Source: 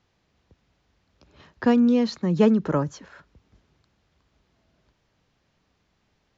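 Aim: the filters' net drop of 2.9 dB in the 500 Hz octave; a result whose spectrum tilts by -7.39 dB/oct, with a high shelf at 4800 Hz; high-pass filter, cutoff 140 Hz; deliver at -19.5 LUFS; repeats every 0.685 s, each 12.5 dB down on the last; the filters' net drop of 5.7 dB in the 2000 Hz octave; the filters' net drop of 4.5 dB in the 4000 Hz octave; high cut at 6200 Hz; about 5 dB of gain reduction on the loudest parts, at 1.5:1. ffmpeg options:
-af "highpass=140,lowpass=6.2k,equalizer=f=500:t=o:g=-3,equalizer=f=2k:t=o:g=-7,equalizer=f=4k:t=o:g=-5,highshelf=f=4.8k:g=5,acompressor=threshold=-29dB:ratio=1.5,aecho=1:1:685|1370|2055:0.237|0.0569|0.0137,volume=8.5dB"

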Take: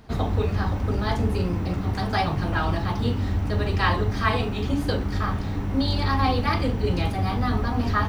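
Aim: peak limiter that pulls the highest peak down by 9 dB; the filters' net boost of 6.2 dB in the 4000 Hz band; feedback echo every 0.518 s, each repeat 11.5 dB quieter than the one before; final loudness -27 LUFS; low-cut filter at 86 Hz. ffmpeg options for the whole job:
-af "highpass=86,equalizer=f=4k:t=o:g=7.5,alimiter=limit=-16dB:level=0:latency=1,aecho=1:1:518|1036|1554:0.266|0.0718|0.0194,volume=-0.5dB"

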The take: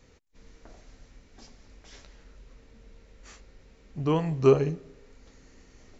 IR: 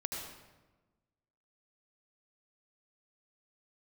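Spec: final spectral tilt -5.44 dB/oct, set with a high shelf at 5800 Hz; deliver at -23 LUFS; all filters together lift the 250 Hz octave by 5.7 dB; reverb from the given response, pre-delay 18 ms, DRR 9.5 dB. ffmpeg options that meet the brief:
-filter_complex "[0:a]equalizer=f=250:t=o:g=8,highshelf=f=5.8k:g=8,asplit=2[a][b];[1:a]atrim=start_sample=2205,adelay=18[c];[b][c]afir=irnorm=-1:irlink=0,volume=-11dB[d];[a][d]amix=inputs=2:normalize=0,volume=-1dB"

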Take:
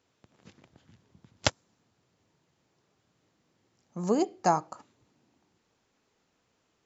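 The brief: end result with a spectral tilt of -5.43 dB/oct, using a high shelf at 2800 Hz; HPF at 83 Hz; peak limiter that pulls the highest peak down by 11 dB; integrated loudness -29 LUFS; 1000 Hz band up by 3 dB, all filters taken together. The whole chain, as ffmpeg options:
-af "highpass=83,equalizer=f=1k:t=o:g=4.5,highshelf=f=2.8k:g=-4,volume=1.5dB,alimiter=limit=-13.5dB:level=0:latency=1"

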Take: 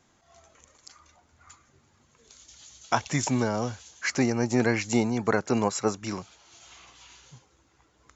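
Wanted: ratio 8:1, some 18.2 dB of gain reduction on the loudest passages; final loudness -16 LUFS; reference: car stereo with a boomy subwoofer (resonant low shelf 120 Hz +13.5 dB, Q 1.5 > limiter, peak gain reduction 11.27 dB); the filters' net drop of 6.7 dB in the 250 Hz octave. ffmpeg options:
-af "equalizer=f=250:t=o:g=-5.5,acompressor=threshold=-38dB:ratio=8,lowshelf=f=120:t=q:w=1.5:g=13.5,volume=29.5dB,alimiter=limit=-4dB:level=0:latency=1"

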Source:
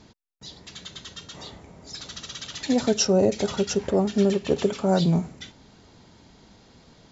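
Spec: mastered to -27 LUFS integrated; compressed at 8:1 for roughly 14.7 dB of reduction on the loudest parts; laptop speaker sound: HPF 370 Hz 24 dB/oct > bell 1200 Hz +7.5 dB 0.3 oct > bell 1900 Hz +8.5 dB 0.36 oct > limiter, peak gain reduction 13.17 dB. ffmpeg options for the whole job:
-af "acompressor=threshold=-32dB:ratio=8,highpass=f=370:w=0.5412,highpass=f=370:w=1.3066,equalizer=f=1.2k:t=o:w=0.3:g=7.5,equalizer=f=1.9k:t=o:w=0.36:g=8.5,volume=16.5dB,alimiter=limit=-17dB:level=0:latency=1"

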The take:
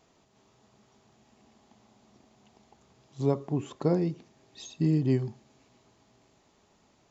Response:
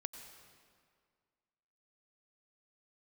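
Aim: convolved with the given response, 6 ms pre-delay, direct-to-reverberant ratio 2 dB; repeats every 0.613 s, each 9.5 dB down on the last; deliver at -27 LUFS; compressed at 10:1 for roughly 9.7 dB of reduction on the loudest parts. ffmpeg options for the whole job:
-filter_complex "[0:a]acompressor=threshold=-30dB:ratio=10,aecho=1:1:613|1226|1839|2452:0.335|0.111|0.0365|0.012,asplit=2[a][b];[1:a]atrim=start_sample=2205,adelay=6[c];[b][c]afir=irnorm=-1:irlink=0,volume=0.5dB[d];[a][d]amix=inputs=2:normalize=0,volume=8dB"

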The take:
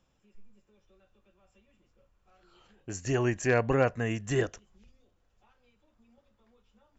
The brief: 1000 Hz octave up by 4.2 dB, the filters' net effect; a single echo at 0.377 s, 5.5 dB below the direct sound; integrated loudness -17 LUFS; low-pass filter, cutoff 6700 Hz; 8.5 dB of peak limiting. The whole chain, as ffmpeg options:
-af "lowpass=6.7k,equalizer=f=1k:t=o:g=6,alimiter=limit=-19.5dB:level=0:latency=1,aecho=1:1:377:0.531,volume=14dB"

